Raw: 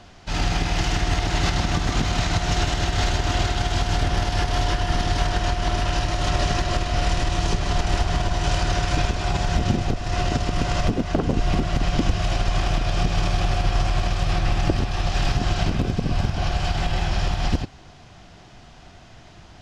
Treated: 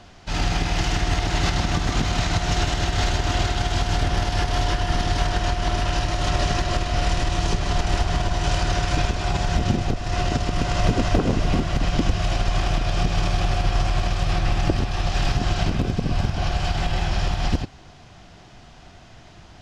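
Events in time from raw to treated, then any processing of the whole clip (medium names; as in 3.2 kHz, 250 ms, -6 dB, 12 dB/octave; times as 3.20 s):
10.51–11.03 s: echo throw 280 ms, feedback 50%, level -2 dB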